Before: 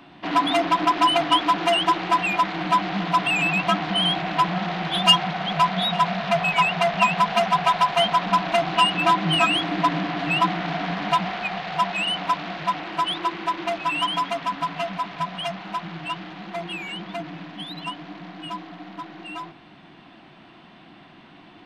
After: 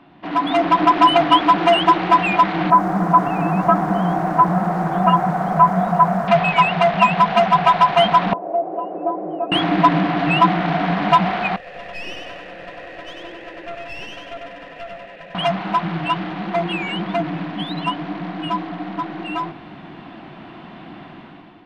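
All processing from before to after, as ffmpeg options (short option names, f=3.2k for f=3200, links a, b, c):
-filter_complex "[0:a]asettb=1/sr,asplit=3[a][b][c];[a]atrim=end=2.704[d];[b]atrim=start=2.7:end=6.28,asetpts=PTS-STARTPTS,afade=t=in:d=0.004:c=qsin,afade=t=out:st=3.576:d=0.004:c=qsin,lowpass=f=1.5k:w=0.5412,lowpass=f=1.5k:w=1.3066,bandreject=f=50:t=h:w=6,bandreject=f=100:t=h:w=6,bandreject=f=150:t=h:w=6,bandreject=f=200:t=h:w=6,bandreject=f=250:t=h:w=6,bandreject=f=300:t=h:w=6,bandreject=f=350:t=h:w=6,acrusher=bits=8:dc=4:mix=0:aa=0.000001[e];[c]atrim=start=6.276[f];[d][e]acrossfade=d=0.004:c1=hsin:c2=qsin[g];[g][f]acrossfade=d=0.004:c1=qsin:c2=hsin,asettb=1/sr,asplit=3[h][i][j];[h]atrim=end=8.334[k];[i]atrim=start=8.33:end=9.52,asetpts=PTS-STARTPTS,afade=t=in:d=0.004:c=qsin,afade=t=out:st=1.186:d=0.004:c=qsin,acompressor=mode=upward:threshold=-20dB:ratio=2.5:attack=3.2:release=140:knee=2.83:detection=peak,asuperpass=centerf=480:order=4:qfactor=1.9[l];[j]atrim=start=9.516[m];[k][l]acrossfade=d=0.004:c1=hsin:c2=qsin[n];[n][m]acrossfade=d=0.004:c1=qsin:c2=hsin,asettb=1/sr,asplit=3[o][p][q];[o]atrim=end=11.564[r];[p]atrim=start=11.56:end=15.35,asetpts=PTS-STARTPTS,afade=t=in:d=0.004:c=qsin,afade=t=out:st=3.786:d=0.004:c=qsin,asplit=3[s][t][u];[s]bandpass=f=530:t=q:w=8,volume=0dB[v];[t]bandpass=f=1.84k:t=q:w=8,volume=-6dB[w];[u]bandpass=f=2.48k:t=q:w=8,volume=-9dB[x];[v][w][x]amix=inputs=3:normalize=0,aecho=1:1:96|192|288|384|480|576|672:0.708|0.375|0.199|0.105|0.0559|0.0296|0.0157,atrim=end_sample=167139,aeval=exprs='clip(val(0),-1,0.00501)':c=same[y];[q]atrim=start=15.346[z];[r][y]acrossfade=d=0.004:c1=hsin:c2=qsin[aa];[aa][z]acrossfade=d=0.004:c1=qsin:c2=hsin,lowpass=f=1.6k:p=1,dynaudnorm=f=160:g=7:m=11.5dB"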